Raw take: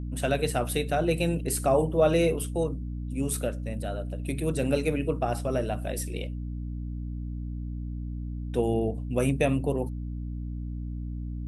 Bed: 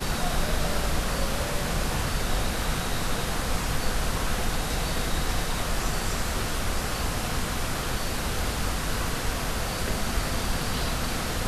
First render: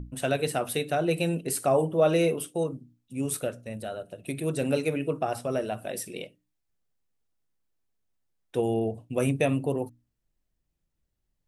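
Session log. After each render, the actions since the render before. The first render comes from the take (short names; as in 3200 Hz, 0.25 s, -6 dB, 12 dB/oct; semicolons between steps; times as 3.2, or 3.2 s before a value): notches 60/120/180/240/300 Hz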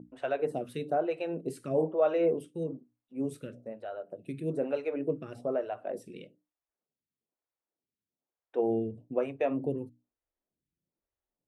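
band-pass 450 Hz, Q 0.51; photocell phaser 1.1 Hz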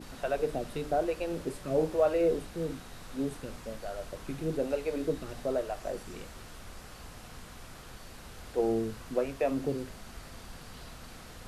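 add bed -19 dB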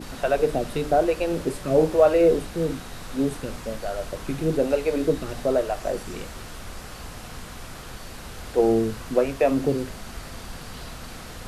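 gain +9 dB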